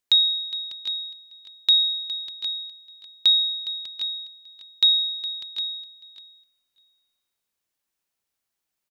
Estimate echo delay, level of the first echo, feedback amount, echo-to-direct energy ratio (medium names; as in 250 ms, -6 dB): 412 ms, -14.5 dB, no regular repeats, -6.0 dB